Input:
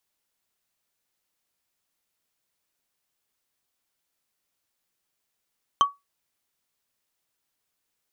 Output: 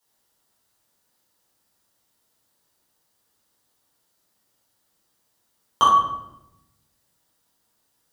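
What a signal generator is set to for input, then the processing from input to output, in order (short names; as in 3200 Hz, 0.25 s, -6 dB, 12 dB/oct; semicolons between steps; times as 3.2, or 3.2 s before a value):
wood hit, lowest mode 1130 Hz, decay 0.19 s, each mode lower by 8 dB, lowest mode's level -11 dB
HPF 46 Hz; bell 2400 Hz -8.5 dB 0.79 oct; shoebox room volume 290 m³, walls mixed, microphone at 4.4 m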